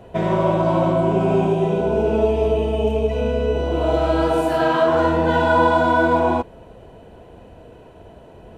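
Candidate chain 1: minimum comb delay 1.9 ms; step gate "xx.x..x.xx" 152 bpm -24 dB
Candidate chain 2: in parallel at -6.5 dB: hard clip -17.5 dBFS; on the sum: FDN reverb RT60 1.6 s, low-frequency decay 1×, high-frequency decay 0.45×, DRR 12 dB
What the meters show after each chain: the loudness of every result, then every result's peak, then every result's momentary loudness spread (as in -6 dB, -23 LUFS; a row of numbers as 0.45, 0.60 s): -22.0, -15.5 LUFS; -6.5, -2.0 dBFS; 8, 5 LU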